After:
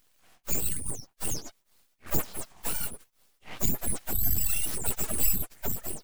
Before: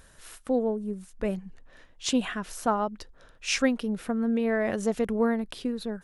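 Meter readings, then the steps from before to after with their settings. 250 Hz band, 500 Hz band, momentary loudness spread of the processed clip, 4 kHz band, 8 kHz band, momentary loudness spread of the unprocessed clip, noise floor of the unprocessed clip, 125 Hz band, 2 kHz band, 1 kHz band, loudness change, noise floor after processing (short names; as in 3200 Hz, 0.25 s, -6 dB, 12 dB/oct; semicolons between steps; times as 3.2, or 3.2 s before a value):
-14.5 dB, -15.5 dB, 11 LU, -6.0 dB, +8.0 dB, 11 LU, -56 dBFS, +3.5 dB, -9.0 dB, -11.0 dB, -1.5 dB, -70 dBFS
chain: spectrum mirrored in octaves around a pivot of 1900 Hz; pre-emphasis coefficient 0.97; full-wave rectifier; gain +4.5 dB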